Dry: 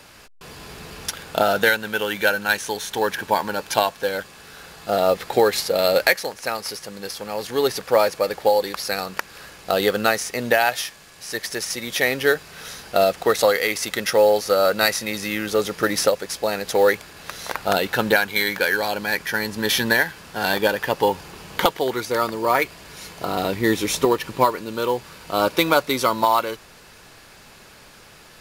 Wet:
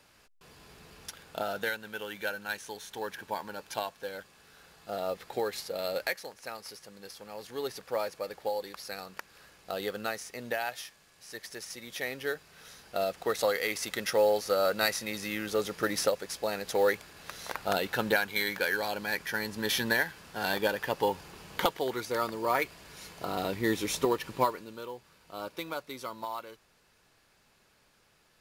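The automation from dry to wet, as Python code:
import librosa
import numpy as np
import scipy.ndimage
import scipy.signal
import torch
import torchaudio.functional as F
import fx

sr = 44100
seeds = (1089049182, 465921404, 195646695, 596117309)

y = fx.gain(x, sr, db=fx.line((12.71, -15.0), (13.73, -9.0), (24.43, -9.0), (24.91, -19.5)))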